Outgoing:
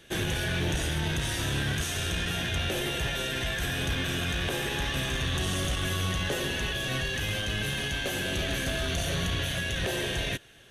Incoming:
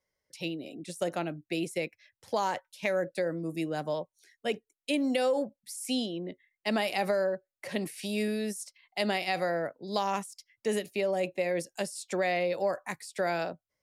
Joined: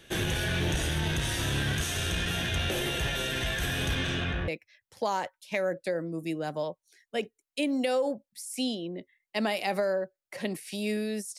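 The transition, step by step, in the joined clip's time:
outgoing
3.94–4.48 s: low-pass 12 kHz -> 1.2 kHz
4.48 s: go over to incoming from 1.79 s

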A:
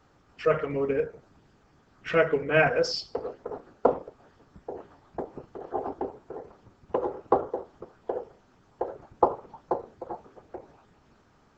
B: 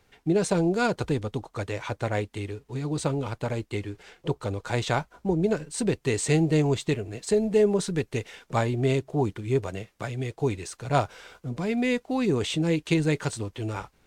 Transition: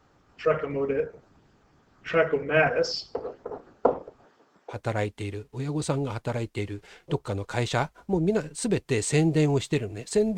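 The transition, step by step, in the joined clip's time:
A
4.25–4.80 s: high-pass 210 Hz -> 620 Hz
4.74 s: go over to B from 1.90 s, crossfade 0.12 s

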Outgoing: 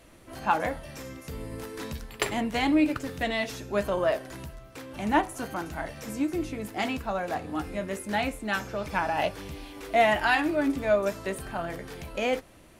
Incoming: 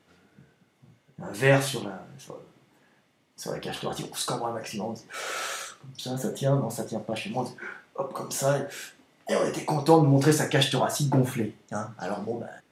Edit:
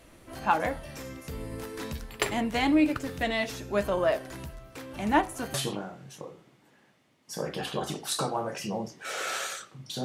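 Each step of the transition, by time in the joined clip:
outgoing
5.54 s: go over to incoming from 1.63 s

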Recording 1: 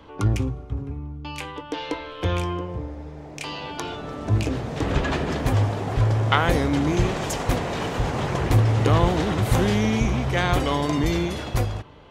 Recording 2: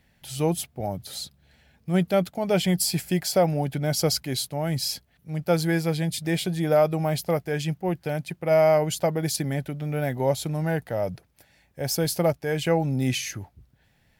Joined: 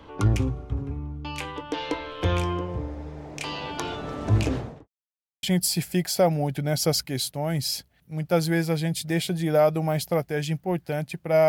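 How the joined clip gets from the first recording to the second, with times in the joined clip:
recording 1
4.46–4.88 s: studio fade out
4.88–5.43 s: mute
5.43 s: go over to recording 2 from 2.60 s

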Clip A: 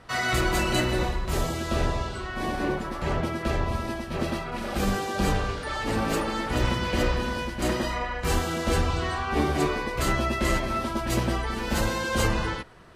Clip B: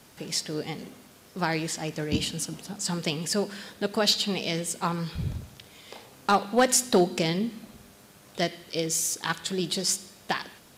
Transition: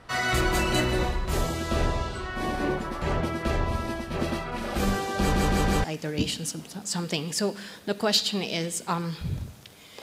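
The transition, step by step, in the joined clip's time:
clip A
5.20 s: stutter in place 0.16 s, 4 plays
5.84 s: go over to clip B from 1.78 s

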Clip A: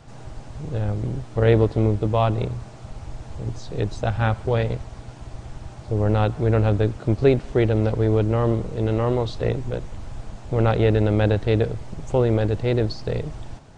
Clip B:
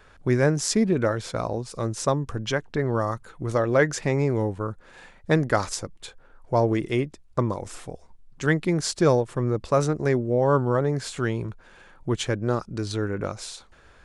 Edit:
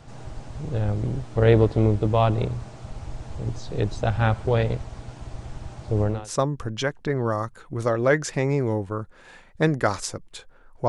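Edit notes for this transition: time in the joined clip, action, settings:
clip A
6.18 s: go over to clip B from 1.87 s, crossfade 0.34 s quadratic

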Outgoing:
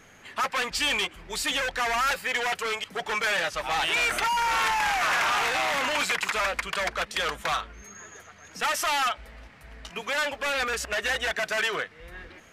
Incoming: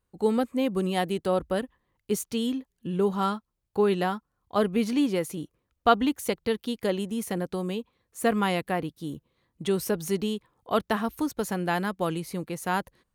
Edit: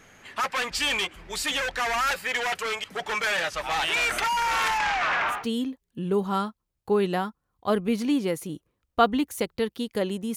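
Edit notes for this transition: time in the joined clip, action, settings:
outgoing
4.77–5.47 s: low-pass 6.9 kHz -> 1.5 kHz
5.37 s: go over to incoming from 2.25 s, crossfade 0.20 s

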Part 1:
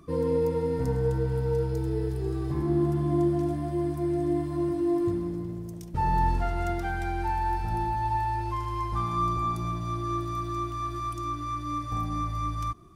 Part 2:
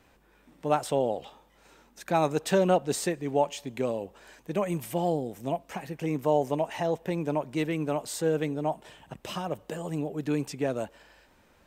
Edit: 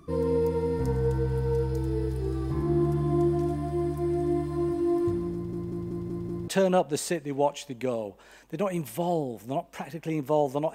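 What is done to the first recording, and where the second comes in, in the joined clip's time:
part 1
5.34 s: stutter in place 0.19 s, 6 plays
6.48 s: go over to part 2 from 2.44 s

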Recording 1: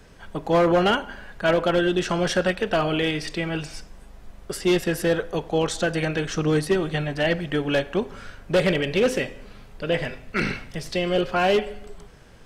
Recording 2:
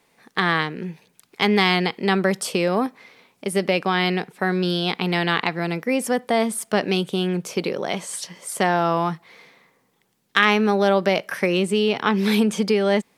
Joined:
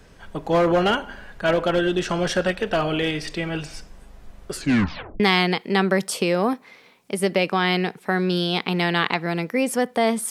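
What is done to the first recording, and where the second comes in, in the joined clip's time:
recording 1
4.53 s: tape stop 0.67 s
5.20 s: go over to recording 2 from 1.53 s

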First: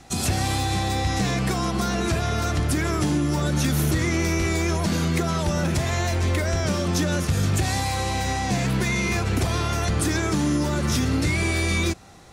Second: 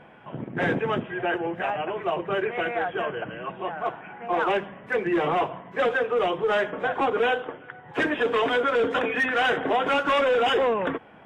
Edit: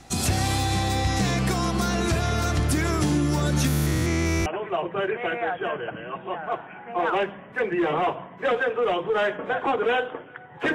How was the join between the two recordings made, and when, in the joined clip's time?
first
3.67–4.46 s: spectrogram pixelated in time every 200 ms
4.46 s: go over to second from 1.80 s

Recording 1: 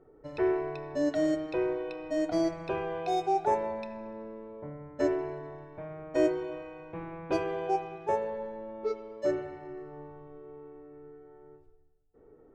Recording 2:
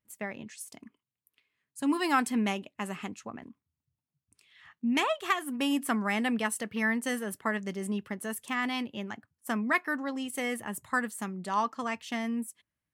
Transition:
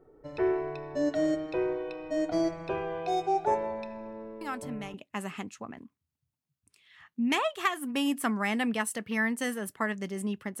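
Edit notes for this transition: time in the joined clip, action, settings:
recording 1
4.41 s: add recording 2 from 2.06 s 0.53 s -10.5 dB
4.94 s: go over to recording 2 from 2.59 s

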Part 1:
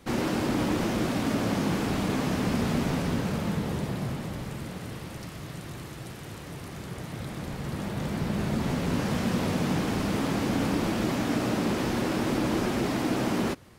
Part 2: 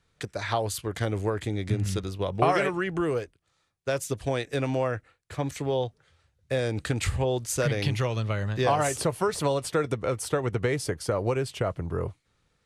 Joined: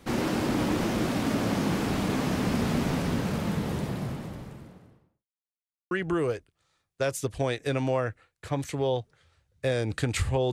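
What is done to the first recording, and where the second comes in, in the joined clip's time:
part 1
3.70–5.26 s: studio fade out
5.26–5.91 s: mute
5.91 s: go over to part 2 from 2.78 s

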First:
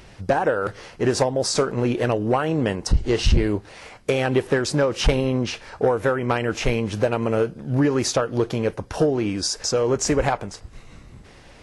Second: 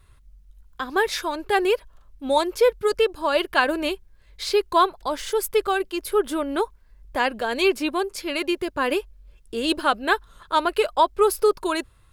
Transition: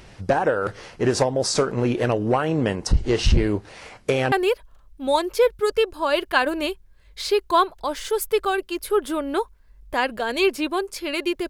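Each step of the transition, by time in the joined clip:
first
4.32 s: go over to second from 1.54 s

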